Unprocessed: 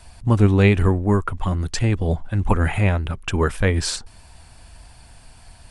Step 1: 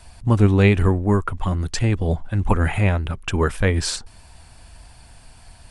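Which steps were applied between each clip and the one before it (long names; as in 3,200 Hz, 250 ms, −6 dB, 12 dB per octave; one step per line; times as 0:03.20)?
no processing that can be heard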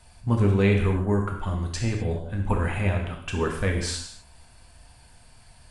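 reverb whose tail is shaped and stops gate 280 ms falling, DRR 0.5 dB
level −8 dB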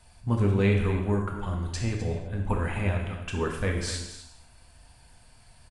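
single-tap delay 256 ms −12.5 dB
level −3 dB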